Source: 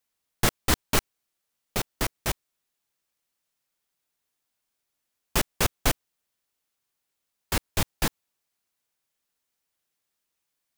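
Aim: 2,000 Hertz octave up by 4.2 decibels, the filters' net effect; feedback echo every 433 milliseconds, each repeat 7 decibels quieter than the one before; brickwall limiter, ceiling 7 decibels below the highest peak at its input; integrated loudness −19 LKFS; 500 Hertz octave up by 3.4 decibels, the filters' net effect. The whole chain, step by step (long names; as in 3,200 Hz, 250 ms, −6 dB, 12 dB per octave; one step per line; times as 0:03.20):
parametric band 500 Hz +4 dB
parametric band 2,000 Hz +5 dB
brickwall limiter −13.5 dBFS
repeating echo 433 ms, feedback 45%, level −7 dB
level +12 dB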